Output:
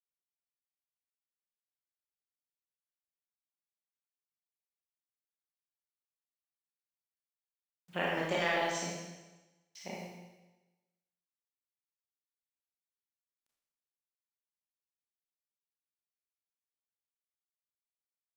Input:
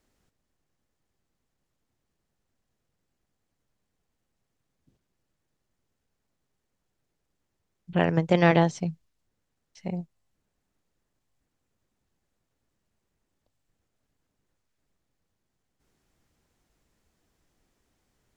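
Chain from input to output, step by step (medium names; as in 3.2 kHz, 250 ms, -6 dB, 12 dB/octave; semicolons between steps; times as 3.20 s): high-pass 1.4 kHz 6 dB/octave; compression, threshold -31 dBFS, peak gain reduction 10.5 dB; bit crusher 11-bit; Schroeder reverb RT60 1.1 s, combs from 27 ms, DRR -4.5 dB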